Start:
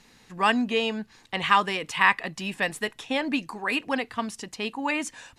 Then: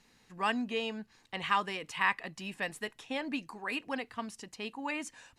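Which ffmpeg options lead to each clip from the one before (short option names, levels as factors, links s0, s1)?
-af "bandreject=f=3500:w=25,volume=0.355"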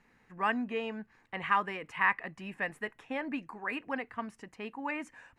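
-af "highshelf=f=2800:t=q:w=1.5:g=-11.5"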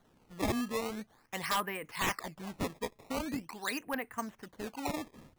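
-af "acrusher=samples=17:mix=1:aa=0.000001:lfo=1:lforange=27.2:lforate=0.44,aeval=exprs='0.0668*(abs(mod(val(0)/0.0668+3,4)-2)-1)':c=same"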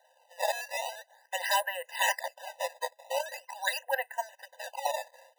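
-af "afftfilt=real='re*eq(mod(floor(b*sr/1024/510),2),1)':imag='im*eq(mod(floor(b*sr/1024/510),2),1)':win_size=1024:overlap=0.75,volume=2.51"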